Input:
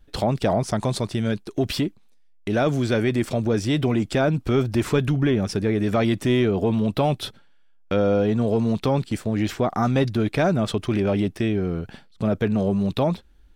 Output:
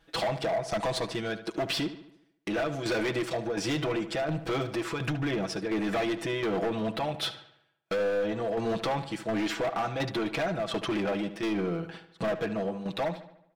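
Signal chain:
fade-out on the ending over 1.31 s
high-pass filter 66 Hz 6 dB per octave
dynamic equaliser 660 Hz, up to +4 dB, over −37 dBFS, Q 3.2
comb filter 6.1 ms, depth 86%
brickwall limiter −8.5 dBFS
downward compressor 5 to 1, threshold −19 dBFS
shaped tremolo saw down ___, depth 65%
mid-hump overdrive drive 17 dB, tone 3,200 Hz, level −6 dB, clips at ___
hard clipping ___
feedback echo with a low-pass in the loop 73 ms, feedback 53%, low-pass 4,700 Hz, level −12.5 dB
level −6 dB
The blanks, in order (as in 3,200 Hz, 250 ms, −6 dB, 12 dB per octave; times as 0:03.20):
1.4 Hz, −9.5 dBFS, −19.5 dBFS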